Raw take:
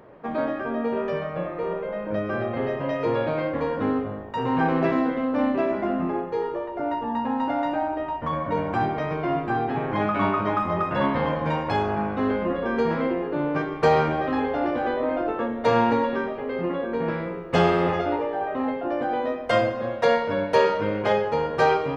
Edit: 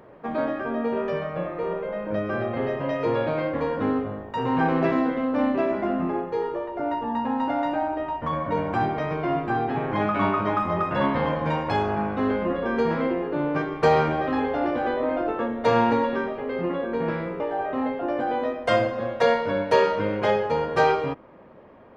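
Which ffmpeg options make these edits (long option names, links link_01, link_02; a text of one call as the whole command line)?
ffmpeg -i in.wav -filter_complex "[0:a]asplit=2[link_01][link_02];[link_01]atrim=end=17.402[link_03];[link_02]atrim=start=18.218[link_04];[link_03][link_04]acrossfade=duration=0.004:curve1=hsin:curve2=hsin" out.wav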